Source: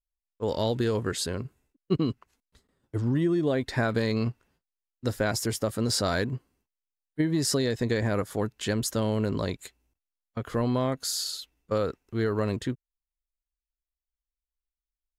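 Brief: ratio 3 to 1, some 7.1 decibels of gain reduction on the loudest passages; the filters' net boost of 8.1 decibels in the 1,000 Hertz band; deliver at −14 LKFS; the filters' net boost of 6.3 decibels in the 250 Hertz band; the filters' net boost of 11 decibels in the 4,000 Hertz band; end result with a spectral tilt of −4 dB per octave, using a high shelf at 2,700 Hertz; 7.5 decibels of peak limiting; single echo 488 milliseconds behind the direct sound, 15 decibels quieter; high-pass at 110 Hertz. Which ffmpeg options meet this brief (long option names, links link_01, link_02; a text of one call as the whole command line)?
ffmpeg -i in.wav -af "highpass=110,equalizer=frequency=250:width_type=o:gain=7.5,equalizer=frequency=1000:width_type=o:gain=8.5,highshelf=frequency=2700:gain=7.5,equalizer=frequency=4000:width_type=o:gain=6.5,acompressor=threshold=-25dB:ratio=3,alimiter=limit=-19dB:level=0:latency=1,aecho=1:1:488:0.178,volume=17dB" out.wav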